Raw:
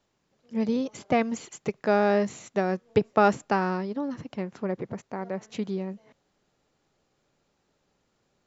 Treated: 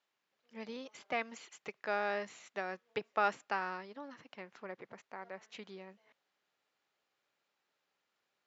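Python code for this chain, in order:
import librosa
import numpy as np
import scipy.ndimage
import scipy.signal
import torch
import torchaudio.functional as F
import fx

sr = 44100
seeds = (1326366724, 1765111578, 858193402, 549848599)

y = scipy.signal.sosfilt(scipy.signal.butter(2, 2300.0, 'lowpass', fs=sr, output='sos'), x)
y = np.diff(y, prepend=0.0)
y = F.gain(torch.from_numpy(y), 8.0).numpy()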